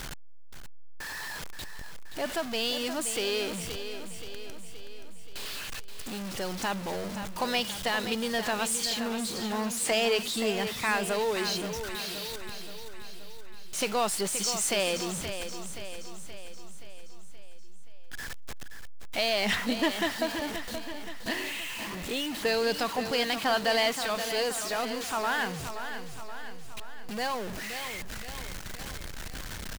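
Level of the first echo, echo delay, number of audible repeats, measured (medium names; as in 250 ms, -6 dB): -9.5 dB, 525 ms, 5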